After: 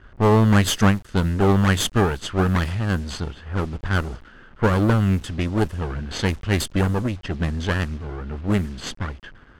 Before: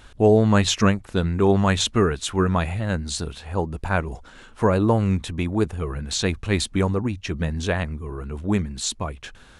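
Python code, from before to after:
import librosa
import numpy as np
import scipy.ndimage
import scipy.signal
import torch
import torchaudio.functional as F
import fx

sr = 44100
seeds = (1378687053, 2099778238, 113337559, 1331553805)

y = fx.lower_of_two(x, sr, delay_ms=0.63)
y = fx.quant_dither(y, sr, seeds[0], bits=8, dither='none')
y = fx.env_lowpass(y, sr, base_hz=1400.0, full_db=-18.0)
y = F.gain(torch.from_numpy(y), 1.5).numpy()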